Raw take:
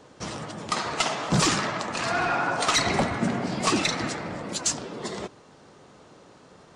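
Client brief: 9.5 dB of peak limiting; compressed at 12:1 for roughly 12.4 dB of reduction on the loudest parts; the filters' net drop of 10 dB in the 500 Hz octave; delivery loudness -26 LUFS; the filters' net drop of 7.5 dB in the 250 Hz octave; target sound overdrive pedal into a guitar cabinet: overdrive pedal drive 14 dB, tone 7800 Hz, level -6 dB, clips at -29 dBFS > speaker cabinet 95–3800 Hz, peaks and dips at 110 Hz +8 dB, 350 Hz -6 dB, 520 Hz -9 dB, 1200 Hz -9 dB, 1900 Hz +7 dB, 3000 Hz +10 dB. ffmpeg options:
-filter_complex "[0:a]equalizer=f=250:t=o:g=-7.5,equalizer=f=500:t=o:g=-7,acompressor=threshold=-33dB:ratio=12,alimiter=level_in=5dB:limit=-24dB:level=0:latency=1,volume=-5dB,asplit=2[a][b];[b]highpass=f=720:p=1,volume=14dB,asoftclip=type=tanh:threshold=-29dB[c];[a][c]amix=inputs=2:normalize=0,lowpass=f=7.8k:p=1,volume=-6dB,highpass=95,equalizer=f=110:t=q:w=4:g=8,equalizer=f=350:t=q:w=4:g=-6,equalizer=f=520:t=q:w=4:g=-9,equalizer=f=1.2k:t=q:w=4:g=-9,equalizer=f=1.9k:t=q:w=4:g=7,equalizer=f=3k:t=q:w=4:g=10,lowpass=f=3.8k:w=0.5412,lowpass=f=3.8k:w=1.3066,volume=7.5dB"

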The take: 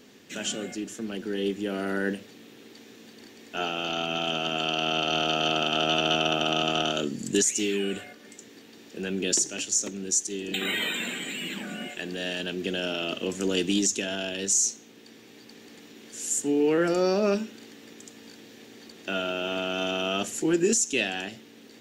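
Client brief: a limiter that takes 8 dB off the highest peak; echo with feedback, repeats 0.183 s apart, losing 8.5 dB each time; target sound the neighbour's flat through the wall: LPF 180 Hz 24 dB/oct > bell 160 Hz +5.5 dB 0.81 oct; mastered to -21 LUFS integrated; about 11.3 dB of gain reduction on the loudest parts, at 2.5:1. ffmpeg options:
-af "acompressor=threshold=-37dB:ratio=2.5,alimiter=level_in=5.5dB:limit=-24dB:level=0:latency=1,volume=-5.5dB,lowpass=f=180:w=0.5412,lowpass=f=180:w=1.3066,equalizer=f=160:t=o:w=0.81:g=5.5,aecho=1:1:183|366|549|732:0.376|0.143|0.0543|0.0206,volume=28.5dB"

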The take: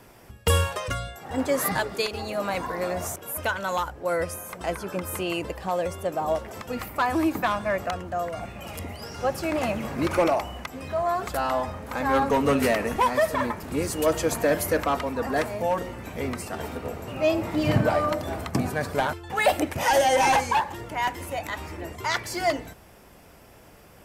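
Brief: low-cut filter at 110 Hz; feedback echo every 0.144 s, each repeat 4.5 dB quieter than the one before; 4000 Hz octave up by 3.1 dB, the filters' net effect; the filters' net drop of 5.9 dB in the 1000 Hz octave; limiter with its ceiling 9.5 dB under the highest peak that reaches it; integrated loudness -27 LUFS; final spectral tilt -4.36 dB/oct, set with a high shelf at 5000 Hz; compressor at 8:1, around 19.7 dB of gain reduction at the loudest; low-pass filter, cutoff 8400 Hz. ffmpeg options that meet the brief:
-af "highpass=110,lowpass=8.4k,equalizer=f=1k:t=o:g=-8,equalizer=f=4k:t=o:g=7,highshelf=f=5k:g=-5,acompressor=threshold=-39dB:ratio=8,alimiter=level_in=10dB:limit=-24dB:level=0:latency=1,volume=-10dB,aecho=1:1:144|288|432|576|720|864|1008|1152|1296:0.596|0.357|0.214|0.129|0.0772|0.0463|0.0278|0.0167|0.01,volume=15dB"

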